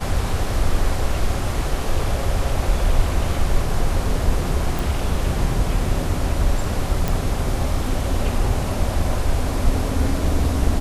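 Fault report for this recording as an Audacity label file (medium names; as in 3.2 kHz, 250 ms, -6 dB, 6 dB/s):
4.790000	4.790000	pop
7.080000	7.080000	pop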